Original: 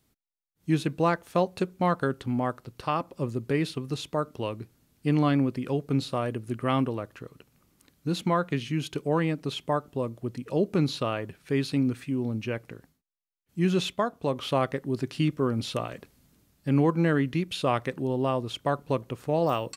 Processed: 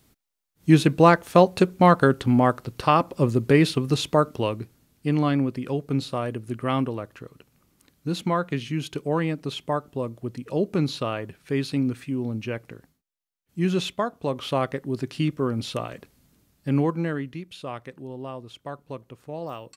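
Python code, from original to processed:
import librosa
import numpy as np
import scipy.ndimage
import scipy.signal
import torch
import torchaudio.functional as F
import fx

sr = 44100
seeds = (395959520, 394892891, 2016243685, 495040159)

y = fx.gain(x, sr, db=fx.line((4.15, 9.0), (5.09, 1.0), (16.76, 1.0), (17.44, -9.0)))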